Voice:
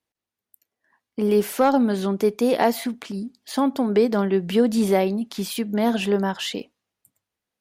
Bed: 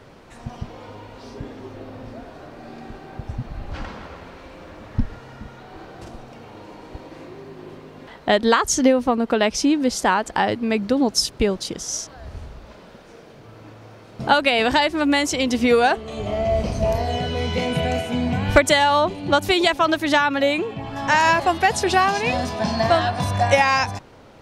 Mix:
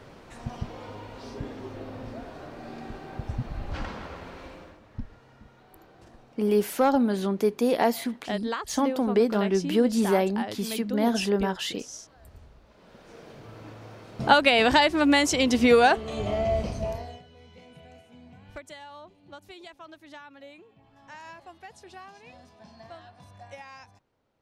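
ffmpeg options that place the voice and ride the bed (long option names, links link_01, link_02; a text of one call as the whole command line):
ffmpeg -i stem1.wav -i stem2.wav -filter_complex "[0:a]adelay=5200,volume=-3.5dB[link_01];[1:a]volume=11dB,afade=type=out:start_time=4.46:duration=0.34:silence=0.237137,afade=type=in:start_time=12.73:duration=0.56:silence=0.223872,afade=type=out:start_time=16.15:duration=1.08:silence=0.0473151[link_02];[link_01][link_02]amix=inputs=2:normalize=0" out.wav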